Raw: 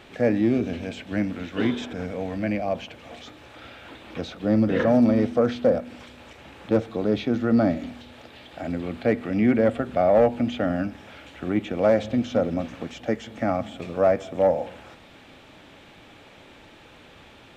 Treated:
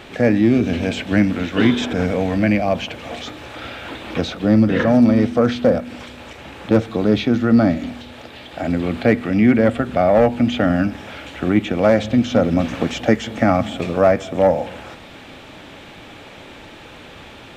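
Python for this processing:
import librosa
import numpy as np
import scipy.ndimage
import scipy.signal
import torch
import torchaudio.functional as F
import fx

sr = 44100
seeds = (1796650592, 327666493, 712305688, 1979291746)

p1 = fx.dynamic_eq(x, sr, hz=530.0, q=0.87, threshold_db=-31.0, ratio=4.0, max_db=-5)
p2 = fx.rider(p1, sr, range_db=10, speed_s=0.5)
p3 = p1 + (p2 * librosa.db_to_amplitude(1.0))
y = p3 * librosa.db_to_amplitude(3.0)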